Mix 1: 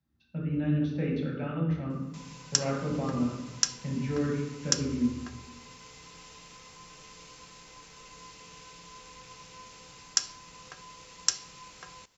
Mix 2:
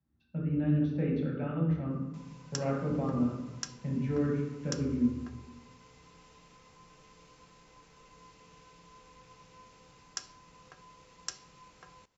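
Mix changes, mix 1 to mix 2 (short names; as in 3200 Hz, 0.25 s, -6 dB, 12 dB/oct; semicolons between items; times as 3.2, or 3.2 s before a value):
background -4.0 dB; master: add high shelf 2100 Hz -10.5 dB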